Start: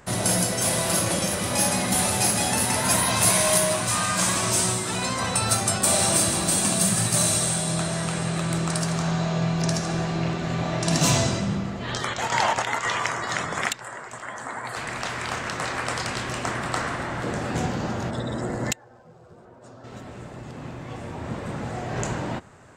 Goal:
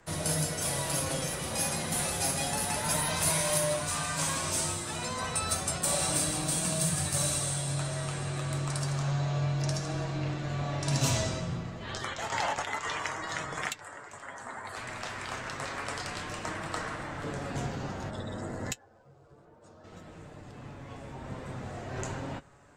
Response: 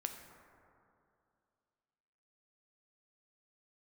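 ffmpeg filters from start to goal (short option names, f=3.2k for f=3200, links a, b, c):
-af "afreqshift=-25,flanger=delay=6.2:depth=1.9:regen=50:speed=0.3:shape=triangular,volume=-4dB"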